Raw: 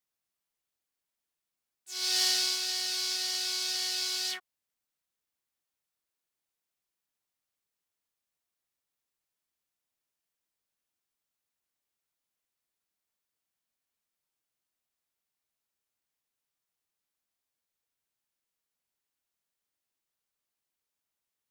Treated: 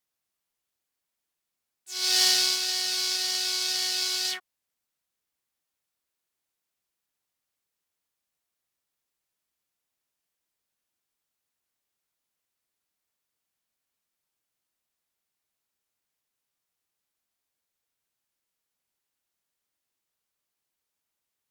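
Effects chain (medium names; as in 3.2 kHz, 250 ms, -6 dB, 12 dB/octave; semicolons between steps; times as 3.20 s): Chebyshev shaper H 7 -28 dB, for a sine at -14 dBFS; trim +6 dB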